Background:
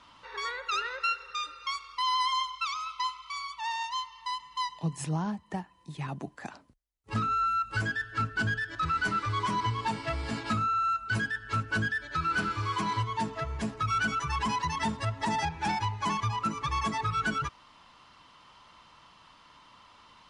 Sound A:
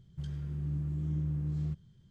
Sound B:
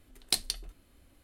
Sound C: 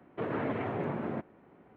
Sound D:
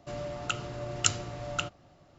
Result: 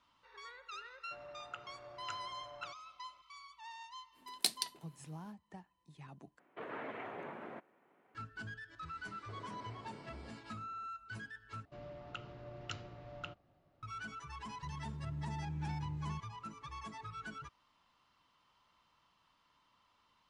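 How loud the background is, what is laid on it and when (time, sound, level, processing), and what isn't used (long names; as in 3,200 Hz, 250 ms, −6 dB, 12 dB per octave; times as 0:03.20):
background −17 dB
0:01.04: mix in D −10 dB + three-way crossover with the lows and the highs turned down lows −16 dB, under 540 Hz, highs −23 dB, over 2,200 Hz
0:04.12: mix in B −4 dB, fades 0.05 s + high-pass filter 160 Hz 24 dB per octave
0:06.39: overwrite with C −4.5 dB + high-pass filter 990 Hz 6 dB per octave
0:09.11: mix in C −10.5 dB + downward compressor 5 to 1, threshold −41 dBFS
0:11.65: overwrite with D −12.5 dB + Bessel low-pass filter 3,100 Hz, order 4
0:14.45: mix in A −8 dB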